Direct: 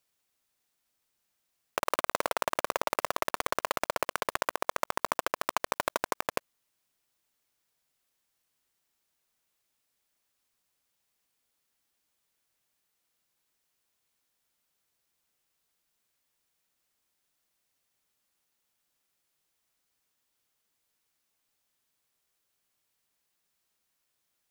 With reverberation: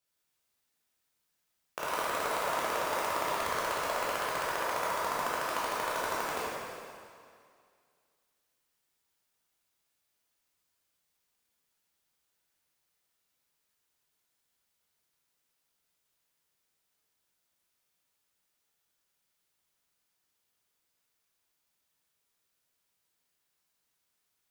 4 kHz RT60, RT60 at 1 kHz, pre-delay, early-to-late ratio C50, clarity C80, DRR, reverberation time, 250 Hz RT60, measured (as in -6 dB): 2.1 s, 2.2 s, 6 ms, -4.0 dB, -1.5 dB, -8.5 dB, 2.2 s, 2.2 s